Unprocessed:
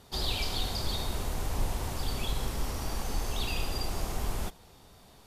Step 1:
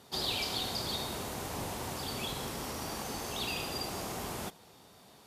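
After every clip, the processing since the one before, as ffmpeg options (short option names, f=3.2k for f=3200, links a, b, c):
-af "highpass=140"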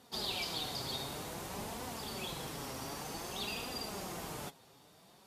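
-af "flanger=delay=3.9:depth=3.8:regen=42:speed=0.54:shape=triangular"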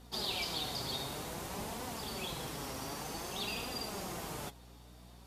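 -af "aeval=exprs='val(0)+0.00158*(sin(2*PI*60*n/s)+sin(2*PI*2*60*n/s)/2+sin(2*PI*3*60*n/s)/3+sin(2*PI*4*60*n/s)/4+sin(2*PI*5*60*n/s)/5)':c=same,volume=1dB"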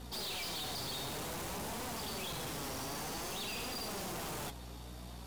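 -af "aeval=exprs='(tanh(251*val(0)+0.2)-tanh(0.2))/251':c=same,volume=9dB"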